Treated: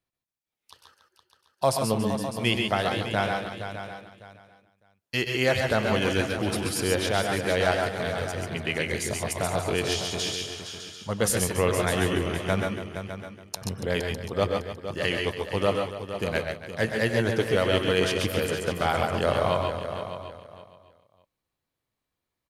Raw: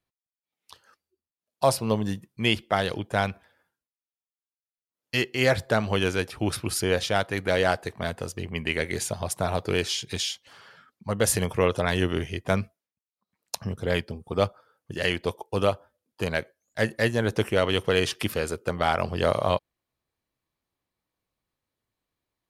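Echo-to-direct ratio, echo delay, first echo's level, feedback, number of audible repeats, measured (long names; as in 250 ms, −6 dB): −1.0 dB, 95 ms, −17.0 dB, repeats not evenly spaced, 11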